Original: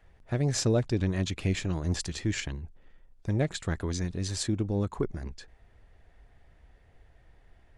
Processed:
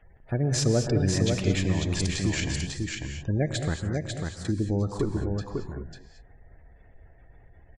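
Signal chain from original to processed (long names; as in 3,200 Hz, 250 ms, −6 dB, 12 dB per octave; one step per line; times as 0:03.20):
gate on every frequency bin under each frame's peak −30 dB strong
0:03.77–0:04.45: guitar amp tone stack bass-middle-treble 6-0-2
in parallel at −1.5 dB: output level in coarse steps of 20 dB
on the sum: single-tap delay 546 ms −4 dB
reverb whose tail is shaped and stops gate 250 ms rising, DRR 6 dB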